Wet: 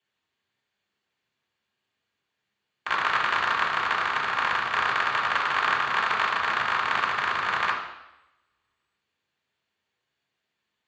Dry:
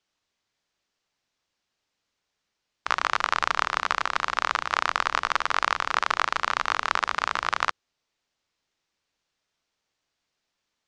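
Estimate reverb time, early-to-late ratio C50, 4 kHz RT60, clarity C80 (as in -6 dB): 0.90 s, 5.5 dB, 0.90 s, 8.0 dB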